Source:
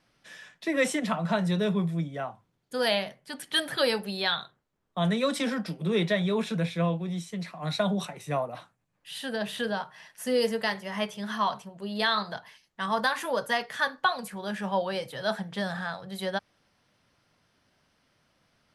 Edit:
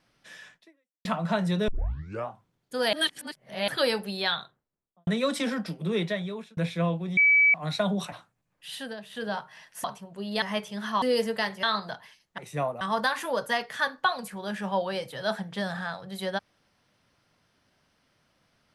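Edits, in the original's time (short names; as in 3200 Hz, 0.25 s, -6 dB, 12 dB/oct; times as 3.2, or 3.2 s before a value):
0.55–1.05 fade out exponential
1.68 tape start 0.61 s
2.93–3.68 reverse
4.29–5.07 studio fade out
5.57–6.57 fade out equal-power
7.17–7.54 bleep 2290 Hz -16 dBFS
8.12–8.55 move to 12.81
9.18–9.77 dip -11.5 dB, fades 0.25 s
10.27–10.88 swap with 11.48–12.06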